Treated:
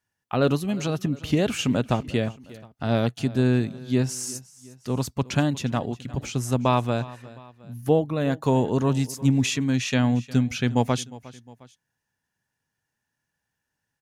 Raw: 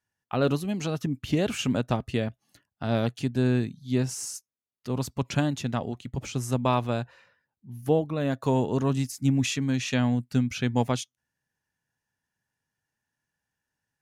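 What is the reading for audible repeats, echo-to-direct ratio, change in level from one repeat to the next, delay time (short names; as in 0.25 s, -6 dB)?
2, -18.5 dB, -6.0 dB, 0.357 s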